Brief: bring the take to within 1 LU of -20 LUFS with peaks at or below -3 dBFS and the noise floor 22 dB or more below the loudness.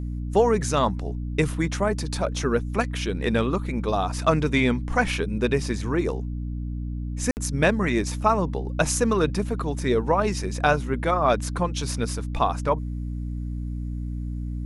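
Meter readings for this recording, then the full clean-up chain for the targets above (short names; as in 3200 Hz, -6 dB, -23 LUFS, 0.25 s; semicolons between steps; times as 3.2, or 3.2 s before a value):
dropouts 1; longest dropout 59 ms; hum 60 Hz; harmonics up to 300 Hz; hum level -27 dBFS; loudness -25.0 LUFS; peak -6.0 dBFS; loudness target -20.0 LUFS
-> interpolate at 7.31, 59 ms; de-hum 60 Hz, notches 5; gain +5 dB; limiter -3 dBFS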